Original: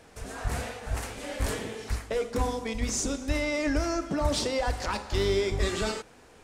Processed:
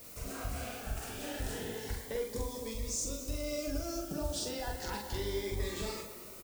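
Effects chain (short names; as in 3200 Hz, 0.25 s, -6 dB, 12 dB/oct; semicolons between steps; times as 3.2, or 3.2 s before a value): 2.32–4.47 graphic EQ 250/1000/2000/8000 Hz -7/-3/-11/+4 dB; compressor 3:1, threshold -34 dBFS, peak gain reduction 10 dB; added noise blue -50 dBFS; doubler 44 ms -3 dB; tape echo 0.22 s, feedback 70%, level -11 dB, low-pass 2400 Hz; cascading phaser rising 0.32 Hz; gain -2.5 dB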